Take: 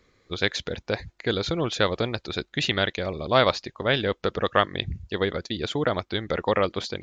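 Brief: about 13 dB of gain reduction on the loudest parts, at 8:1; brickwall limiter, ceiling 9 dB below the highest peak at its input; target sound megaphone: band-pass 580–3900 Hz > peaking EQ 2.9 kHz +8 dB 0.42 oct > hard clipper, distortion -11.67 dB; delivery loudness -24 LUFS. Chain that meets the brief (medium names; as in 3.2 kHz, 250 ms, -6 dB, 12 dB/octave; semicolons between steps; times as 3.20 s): compression 8:1, threshold -28 dBFS; peak limiter -22 dBFS; band-pass 580–3900 Hz; peaking EQ 2.9 kHz +8 dB 0.42 oct; hard clipper -29.5 dBFS; trim +15 dB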